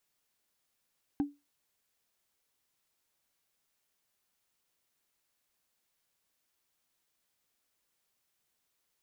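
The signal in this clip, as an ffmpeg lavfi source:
ffmpeg -f lavfi -i "aevalsrc='0.0708*pow(10,-3*t/0.23)*sin(2*PI*287*t)+0.0178*pow(10,-3*t/0.068)*sin(2*PI*791.3*t)+0.00447*pow(10,-3*t/0.03)*sin(2*PI*1550.9*t)+0.00112*pow(10,-3*t/0.017)*sin(2*PI*2563.8*t)+0.000282*pow(10,-3*t/0.01)*sin(2*PI*3828.6*t)':duration=0.45:sample_rate=44100" out.wav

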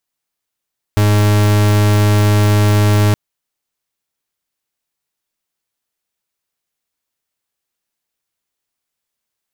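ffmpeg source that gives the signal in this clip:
ffmpeg -f lavfi -i "aevalsrc='0.282*(2*lt(mod(104*t,1),0.42)-1)':duration=2.17:sample_rate=44100" out.wav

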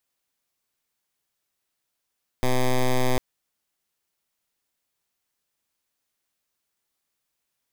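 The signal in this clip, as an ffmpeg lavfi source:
ffmpeg -f lavfi -i "aevalsrc='0.1*(2*lt(mod(127*t,1),0.09)-1)':duration=0.75:sample_rate=44100" out.wav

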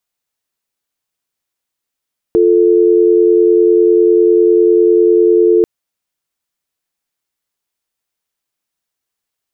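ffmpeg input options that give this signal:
ffmpeg -f lavfi -i "aevalsrc='0.355*(sin(2*PI*350*t)+sin(2*PI*440*t))':duration=3.29:sample_rate=44100" out.wav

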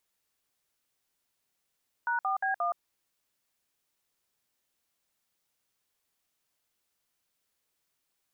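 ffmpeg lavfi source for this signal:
ffmpeg -f lavfi -i "aevalsrc='0.0355*clip(min(mod(t,0.177),0.12-mod(t,0.177))/0.002,0,1)*(eq(floor(t/0.177),0)*(sin(2*PI*941*mod(t,0.177))+sin(2*PI*1477*mod(t,0.177)))+eq(floor(t/0.177),1)*(sin(2*PI*770*mod(t,0.177))+sin(2*PI*1209*mod(t,0.177)))+eq(floor(t/0.177),2)*(sin(2*PI*770*mod(t,0.177))+sin(2*PI*1633*mod(t,0.177)))+eq(floor(t/0.177),3)*(sin(2*PI*697*mod(t,0.177))+sin(2*PI*1209*mod(t,0.177))))':duration=0.708:sample_rate=44100" out.wav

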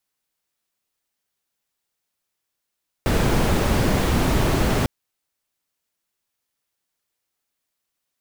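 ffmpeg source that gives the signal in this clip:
ffmpeg -f lavfi -i "anoisesrc=color=brown:amplitude=0.556:duration=1.8:sample_rate=44100:seed=1" out.wav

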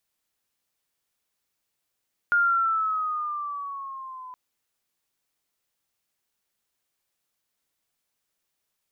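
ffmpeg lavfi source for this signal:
ffmpeg -f lavfi -i "aevalsrc='pow(10,(-17-21*t/2.02)/20)*sin(2*PI*1420*2.02/(-6*log(2)/12)*(exp(-6*log(2)/12*t/2.02)-1))':duration=2.02:sample_rate=44100" out.wav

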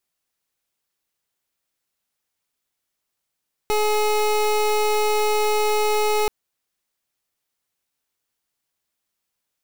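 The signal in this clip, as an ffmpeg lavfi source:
ffmpeg -f lavfi -i "aevalsrc='0.106*(2*lt(mod(424*t,1),0.26)-1)':duration=2.58:sample_rate=44100" out.wav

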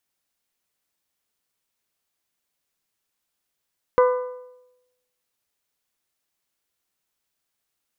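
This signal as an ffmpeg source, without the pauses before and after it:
ffmpeg -f lavfi -i "aevalsrc='0.266*pow(10,-3*t/0.93)*sin(2*PI*500*t)+0.133*pow(10,-3*t/0.755)*sin(2*PI*1000*t)+0.0668*pow(10,-3*t/0.715)*sin(2*PI*1200*t)+0.0335*pow(10,-3*t/0.669)*sin(2*PI*1500*t)+0.0168*pow(10,-3*t/0.614)*sin(2*PI*2000*t)':duration=1.55:sample_rate=44100" out.wav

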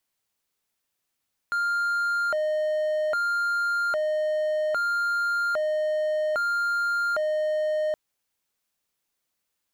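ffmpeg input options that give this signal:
ffmpeg -f lavfi -i "aevalsrc='0.0944*(1-4*abs(mod((1007.5*t+392.5/0.62*(0.5-abs(mod(0.62*t,1)-0.5)))+0.25,1)-0.5))':duration=6.42:sample_rate=44100" out.wav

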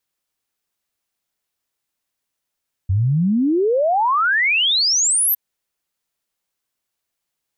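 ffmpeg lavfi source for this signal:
ffmpeg -f lavfi -i "aevalsrc='0.2*clip(min(t,2.46-t)/0.01,0,1)*sin(2*PI*89*2.46/log(13000/89)*(exp(log(13000/89)*t/2.46)-1))':duration=2.46:sample_rate=44100" out.wav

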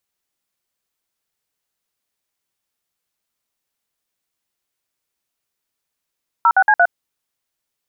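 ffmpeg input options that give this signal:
ffmpeg -f lavfi -i "aevalsrc='0.266*clip(min(mod(t,0.115),0.06-mod(t,0.115))/0.002,0,1)*(eq(floor(t/0.115),0)*(sin(2*PI*941*mod(t,0.115))+sin(2*PI*1336*mod(t,0.115)))+eq(floor(t/0.115),1)*(sin(2*PI*770*mod(t,0.115))+sin(2*PI*1477*mod(t,0.115)))+eq(floor(t/0.115),2)*(sin(2*PI*852*mod(t,0.115))+sin(2*PI*1633*mod(t,0.115)))+eq(floor(t/0.115),3)*(sin(2*PI*697*mod(t,0.115))+sin(2*PI*1477*mod(t,0.115))))':duration=0.46:sample_rate=44100" out.wav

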